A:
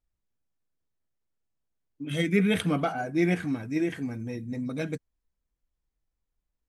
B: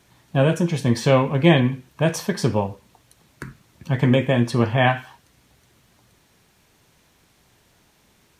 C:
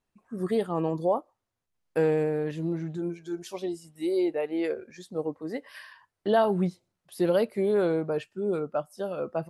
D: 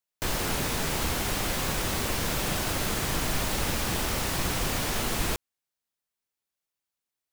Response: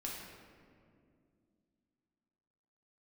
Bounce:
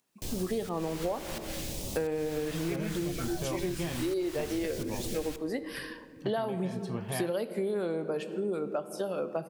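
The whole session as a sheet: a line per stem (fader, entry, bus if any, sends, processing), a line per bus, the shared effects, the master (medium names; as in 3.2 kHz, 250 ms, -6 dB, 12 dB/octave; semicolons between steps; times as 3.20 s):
-6.5 dB, 0.35 s, no send, barber-pole phaser -2.5 Hz
-16.0 dB, 2.35 s, no send, none
+2.0 dB, 0.00 s, send -9.5 dB, Chebyshev high-pass 190 Hz, order 2; treble shelf 4.1 kHz +8 dB
-8.5 dB, 0.00 s, send -13.5 dB, upward compressor, threshold -55 dBFS; phase shifter stages 2, 0.66 Hz, lowest notch 230–1500 Hz; volume shaper 87 bpm, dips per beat 1, -18 dB, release 252 ms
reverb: on, RT60 2.3 s, pre-delay 4 ms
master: compression 6:1, threshold -29 dBFS, peak gain reduction 13.5 dB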